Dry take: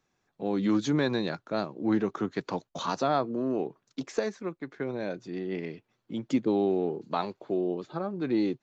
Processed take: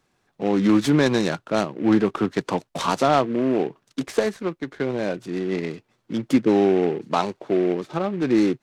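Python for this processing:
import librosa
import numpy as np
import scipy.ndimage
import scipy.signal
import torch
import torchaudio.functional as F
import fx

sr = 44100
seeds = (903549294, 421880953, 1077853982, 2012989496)

y = fx.noise_mod_delay(x, sr, seeds[0], noise_hz=1700.0, depth_ms=0.031)
y = F.gain(torch.from_numpy(y), 8.0).numpy()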